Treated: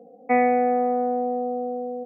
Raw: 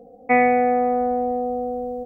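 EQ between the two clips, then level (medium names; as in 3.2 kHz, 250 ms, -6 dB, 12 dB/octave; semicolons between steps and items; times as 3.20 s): high-pass 170 Hz 24 dB/octave; treble shelf 2.2 kHz -11 dB; -1.5 dB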